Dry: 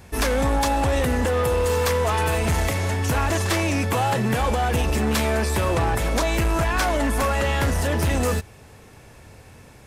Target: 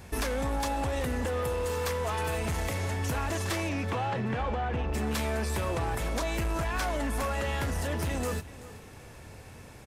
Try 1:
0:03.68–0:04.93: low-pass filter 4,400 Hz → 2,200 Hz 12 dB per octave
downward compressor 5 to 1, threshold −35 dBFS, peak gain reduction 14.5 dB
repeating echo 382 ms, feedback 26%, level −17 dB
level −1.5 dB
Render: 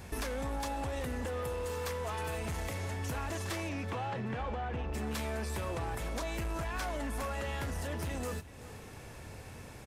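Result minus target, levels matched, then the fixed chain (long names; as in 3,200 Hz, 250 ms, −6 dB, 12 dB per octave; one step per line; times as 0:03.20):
downward compressor: peak gain reduction +6 dB
0:03.68–0:04.93: low-pass filter 4,400 Hz → 2,200 Hz 12 dB per octave
downward compressor 5 to 1, threshold −27.5 dBFS, peak gain reduction 8.5 dB
repeating echo 382 ms, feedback 26%, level −17 dB
level −1.5 dB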